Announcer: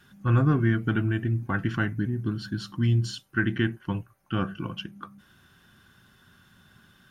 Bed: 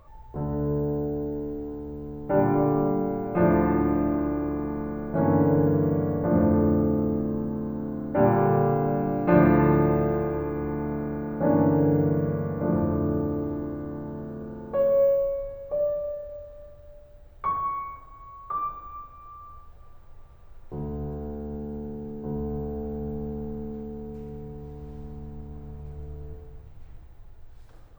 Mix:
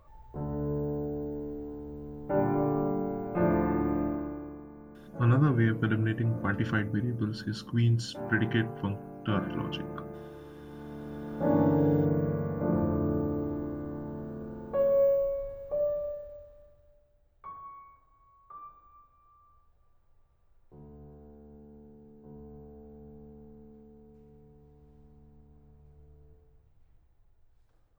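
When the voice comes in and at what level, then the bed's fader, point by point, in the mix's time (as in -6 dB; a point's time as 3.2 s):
4.95 s, -2.5 dB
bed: 4.04 s -5.5 dB
4.7 s -18 dB
10.6 s -18 dB
11.54 s -3.5 dB
16.04 s -3.5 dB
17.14 s -17.5 dB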